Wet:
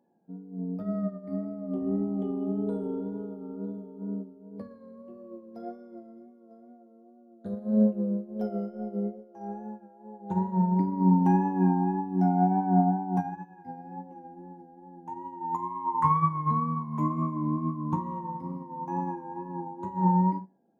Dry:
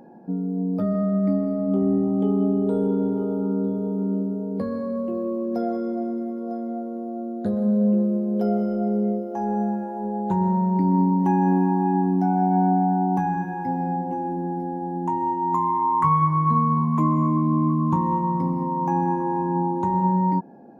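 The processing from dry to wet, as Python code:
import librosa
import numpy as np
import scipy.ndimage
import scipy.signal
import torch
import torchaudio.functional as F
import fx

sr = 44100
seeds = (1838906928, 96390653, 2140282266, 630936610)

y = fx.wow_flutter(x, sr, seeds[0], rate_hz=2.1, depth_cents=47.0)
y = fx.rev_schroeder(y, sr, rt60_s=0.42, comb_ms=33, drr_db=9.0)
y = fx.upward_expand(y, sr, threshold_db=-30.0, expansion=2.5)
y = F.gain(torch.from_numpy(y), -2.0).numpy()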